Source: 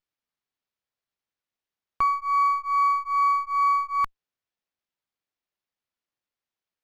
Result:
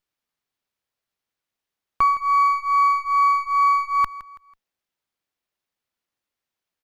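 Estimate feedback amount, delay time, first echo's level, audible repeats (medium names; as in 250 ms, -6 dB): 37%, 164 ms, -17.0 dB, 3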